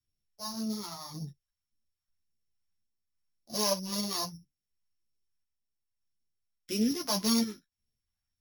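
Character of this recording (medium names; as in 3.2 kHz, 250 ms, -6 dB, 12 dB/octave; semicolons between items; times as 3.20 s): a buzz of ramps at a fixed pitch in blocks of 8 samples; phasing stages 2, 1.8 Hz, lowest notch 380–1000 Hz; random-step tremolo; a shimmering, thickened sound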